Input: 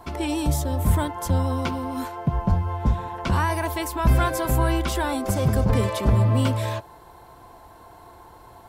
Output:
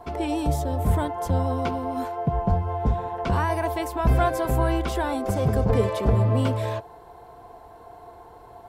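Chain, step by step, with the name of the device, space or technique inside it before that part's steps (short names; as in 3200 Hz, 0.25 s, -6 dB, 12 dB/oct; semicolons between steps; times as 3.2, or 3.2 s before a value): inside a helmet (high shelf 3700 Hz -6.5 dB; small resonant body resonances 450/700 Hz, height 10 dB, ringing for 45 ms); gain -2 dB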